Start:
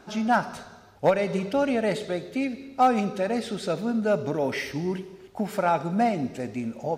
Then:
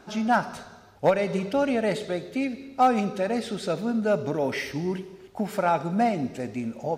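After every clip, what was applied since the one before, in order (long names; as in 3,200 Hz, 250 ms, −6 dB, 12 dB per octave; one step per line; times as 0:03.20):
no processing that can be heard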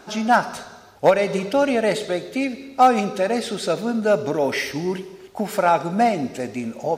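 bass and treble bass −6 dB, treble +3 dB
level +6 dB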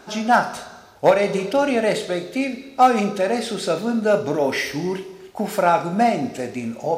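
flutter between parallel walls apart 5.9 metres, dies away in 0.24 s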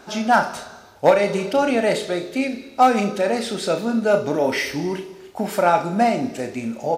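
double-tracking delay 31 ms −12 dB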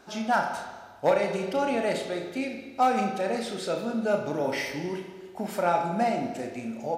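spring reverb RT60 1.4 s, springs 40/53 ms, chirp 25 ms, DRR 6.5 dB
level −8.5 dB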